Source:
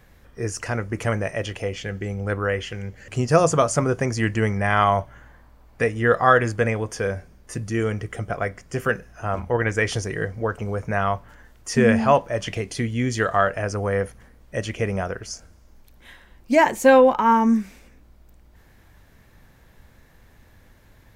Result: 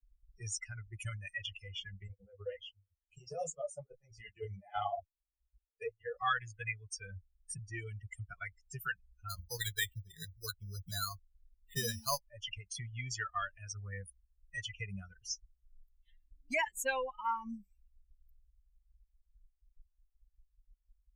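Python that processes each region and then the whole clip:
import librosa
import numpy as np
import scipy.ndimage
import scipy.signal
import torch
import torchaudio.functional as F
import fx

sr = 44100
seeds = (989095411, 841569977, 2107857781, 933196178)

y = fx.chain(x, sr, fx.band_shelf(hz=620.0, db=12.5, octaves=1.2),
    fx.level_steps(step_db=12),
    fx.detune_double(cents=50), at=(2.07, 6.19))
y = fx.chain(y, sr, fx.cvsd(bps=64000),
    fx.resample_bad(factor=8, down='filtered', up='hold'), at=(9.3, 12.24))
y = fx.bin_expand(y, sr, power=3.0)
y = fx.tone_stack(y, sr, knobs='10-0-10')
y = fx.band_squash(y, sr, depth_pct=70)
y = F.gain(torch.from_numpy(y), 2.5).numpy()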